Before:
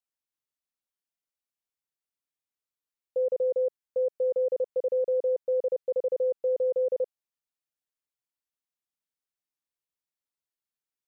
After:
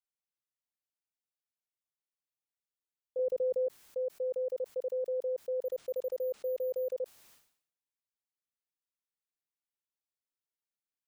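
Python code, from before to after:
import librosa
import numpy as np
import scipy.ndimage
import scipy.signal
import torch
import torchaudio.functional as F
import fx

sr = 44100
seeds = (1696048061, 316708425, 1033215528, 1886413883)

y = fx.low_shelf(x, sr, hz=300.0, db=11.0, at=(3.19, 3.67))
y = fx.resample_bad(y, sr, factor=3, down='none', up='hold', at=(5.65, 6.93))
y = fx.sustainer(y, sr, db_per_s=94.0)
y = y * 10.0 ** (-7.5 / 20.0)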